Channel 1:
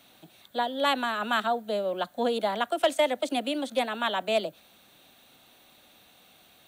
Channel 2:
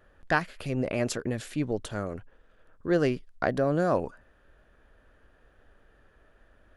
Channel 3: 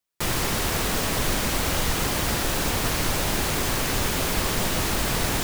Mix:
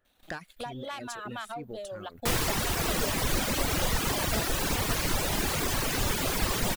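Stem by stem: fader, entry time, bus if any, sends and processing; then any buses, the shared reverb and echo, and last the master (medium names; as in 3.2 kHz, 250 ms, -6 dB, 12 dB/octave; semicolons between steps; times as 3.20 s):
-9.5 dB, 0.05 s, bus A, no send, none
-11.5 dB, 0.00 s, bus A, no send, treble shelf 3.3 kHz +8 dB
-1.0 dB, 2.05 s, no bus, no send, none
bus A: 0.0 dB, waveshaping leveller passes 2; compression 10:1, threshold -34 dBFS, peak gain reduction 10.5 dB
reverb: none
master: reverb removal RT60 1.2 s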